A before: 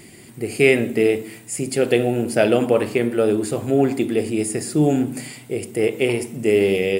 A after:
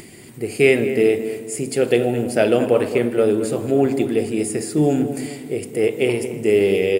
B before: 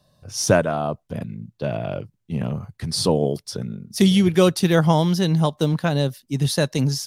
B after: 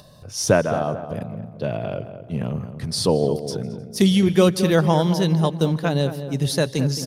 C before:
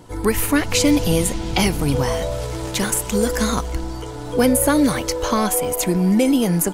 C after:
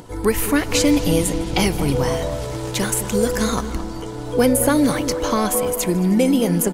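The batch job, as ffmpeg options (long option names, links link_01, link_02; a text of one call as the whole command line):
ffmpeg -i in.wav -filter_complex "[0:a]asplit=2[link_01][link_02];[link_02]aecho=0:1:154|308|462:0.0708|0.0347|0.017[link_03];[link_01][link_03]amix=inputs=2:normalize=0,acompressor=mode=upward:threshold=-36dB:ratio=2.5,equalizer=frequency=450:width_type=o:width=0.61:gain=2.5,asplit=2[link_04][link_05];[link_05]adelay=219,lowpass=frequency=1600:poles=1,volume=-10dB,asplit=2[link_06][link_07];[link_07]adelay=219,lowpass=frequency=1600:poles=1,volume=0.46,asplit=2[link_08][link_09];[link_09]adelay=219,lowpass=frequency=1600:poles=1,volume=0.46,asplit=2[link_10][link_11];[link_11]adelay=219,lowpass=frequency=1600:poles=1,volume=0.46,asplit=2[link_12][link_13];[link_13]adelay=219,lowpass=frequency=1600:poles=1,volume=0.46[link_14];[link_06][link_08][link_10][link_12][link_14]amix=inputs=5:normalize=0[link_15];[link_04][link_15]amix=inputs=2:normalize=0,volume=-1dB" out.wav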